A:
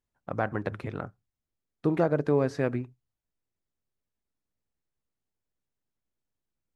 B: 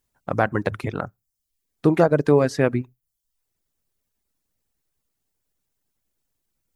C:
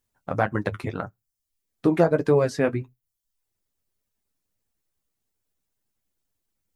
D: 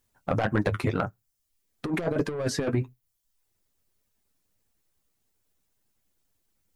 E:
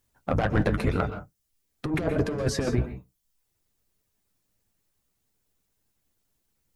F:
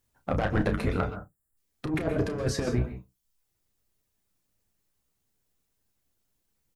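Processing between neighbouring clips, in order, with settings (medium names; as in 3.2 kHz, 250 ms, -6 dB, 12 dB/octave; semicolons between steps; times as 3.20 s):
reverb removal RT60 0.57 s; treble shelf 5.8 kHz +9.5 dB; trim +8.5 dB
flange 1.7 Hz, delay 8.5 ms, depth 3.4 ms, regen -36%; trim +1 dB
saturation -19 dBFS, distortion -9 dB; compressor with a negative ratio -27 dBFS, ratio -0.5; trim +2.5 dB
octave divider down 1 oct, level -1 dB; reverberation, pre-delay 117 ms, DRR 9.5 dB
doubling 32 ms -9.5 dB; time-frequency box 1.15–1.57 s, 2–7 kHz -17 dB; trim -2.5 dB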